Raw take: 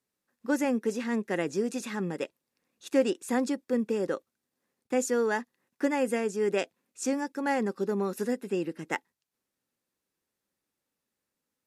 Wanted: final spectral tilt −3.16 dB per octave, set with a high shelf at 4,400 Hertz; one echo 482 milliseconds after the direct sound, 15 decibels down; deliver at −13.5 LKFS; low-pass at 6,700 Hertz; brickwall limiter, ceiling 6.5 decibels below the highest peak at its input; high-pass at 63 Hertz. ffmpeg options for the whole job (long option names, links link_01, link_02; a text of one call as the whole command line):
ffmpeg -i in.wav -af "highpass=63,lowpass=6700,highshelf=frequency=4400:gain=-6,alimiter=limit=-20.5dB:level=0:latency=1,aecho=1:1:482:0.178,volume=18.5dB" out.wav